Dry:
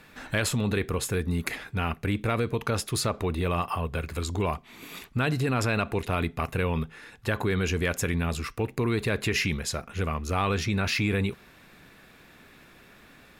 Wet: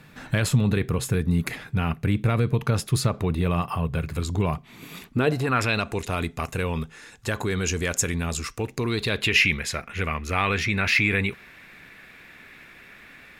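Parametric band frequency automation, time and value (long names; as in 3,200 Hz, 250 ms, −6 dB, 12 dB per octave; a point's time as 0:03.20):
parametric band +11.5 dB 0.96 octaves
0:04.97 140 Hz
0:05.45 910 Hz
0:05.86 7,000 Hz
0:08.63 7,000 Hz
0:09.55 2,100 Hz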